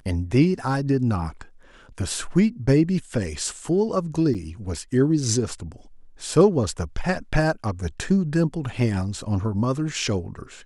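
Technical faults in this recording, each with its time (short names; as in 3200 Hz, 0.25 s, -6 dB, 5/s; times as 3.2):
4.34–4.35 gap 7.1 ms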